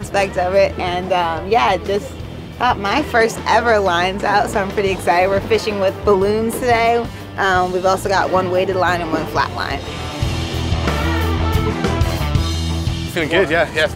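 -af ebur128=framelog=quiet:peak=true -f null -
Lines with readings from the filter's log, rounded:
Integrated loudness:
  I:         -17.2 LUFS
  Threshold: -27.3 LUFS
Loudness range:
  LRA:         3.3 LU
  Threshold: -37.2 LUFS
  LRA low:   -19.3 LUFS
  LRA high:  -16.0 LUFS
True peak:
  Peak:       -2.2 dBFS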